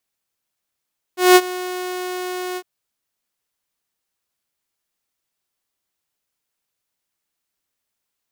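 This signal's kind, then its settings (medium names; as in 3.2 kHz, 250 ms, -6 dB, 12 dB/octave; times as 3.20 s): ADSR saw 364 Hz, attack 187 ms, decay 48 ms, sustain -19 dB, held 1.40 s, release 56 ms -3 dBFS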